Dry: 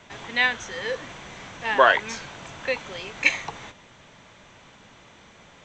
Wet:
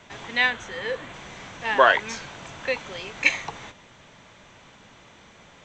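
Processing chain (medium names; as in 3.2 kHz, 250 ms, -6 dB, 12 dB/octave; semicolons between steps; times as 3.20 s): 0.50–1.14 s: peaking EQ 5.6 kHz -8 dB 0.69 oct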